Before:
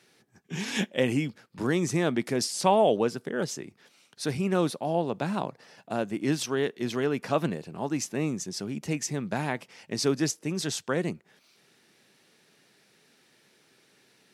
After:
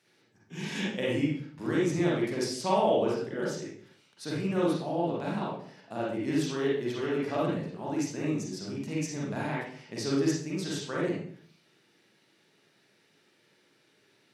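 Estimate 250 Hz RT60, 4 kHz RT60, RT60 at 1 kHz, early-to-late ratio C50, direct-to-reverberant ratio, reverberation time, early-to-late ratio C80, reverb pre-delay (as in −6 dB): 0.65 s, 0.45 s, 0.50 s, −0.5 dB, −6.0 dB, 0.55 s, 5.0 dB, 38 ms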